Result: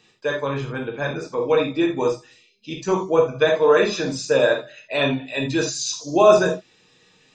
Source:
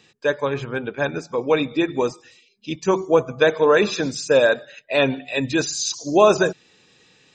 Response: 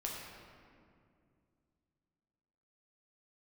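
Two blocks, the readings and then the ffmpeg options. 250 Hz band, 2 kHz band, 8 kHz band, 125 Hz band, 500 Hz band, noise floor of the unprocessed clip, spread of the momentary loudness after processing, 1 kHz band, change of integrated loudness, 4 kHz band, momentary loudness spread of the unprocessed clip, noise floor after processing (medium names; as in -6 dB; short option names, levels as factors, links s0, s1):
-1.0 dB, -2.0 dB, -1.5 dB, +1.0 dB, 0.0 dB, -57 dBFS, 12 LU, -0.5 dB, 0.0 dB, -0.5 dB, 10 LU, -58 dBFS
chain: -filter_complex "[1:a]atrim=start_sample=2205,atrim=end_sample=3969[s0];[0:a][s0]afir=irnorm=-1:irlink=0"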